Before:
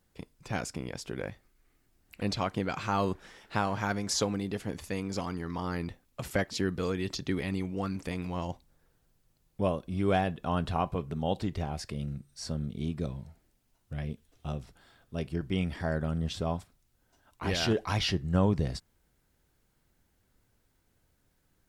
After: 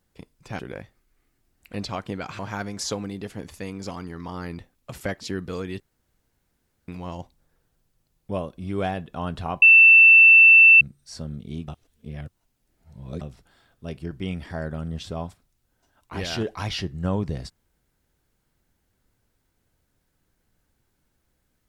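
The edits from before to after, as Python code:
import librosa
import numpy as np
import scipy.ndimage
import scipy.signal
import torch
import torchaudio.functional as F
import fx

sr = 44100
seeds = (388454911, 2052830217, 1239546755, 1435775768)

y = fx.edit(x, sr, fx.cut(start_s=0.59, length_s=0.48),
    fx.cut(start_s=2.87, length_s=0.82),
    fx.room_tone_fill(start_s=7.1, length_s=1.08),
    fx.bleep(start_s=10.92, length_s=1.19, hz=2670.0, db=-8.0),
    fx.reverse_span(start_s=12.98, length_s=1.53), tone=tone)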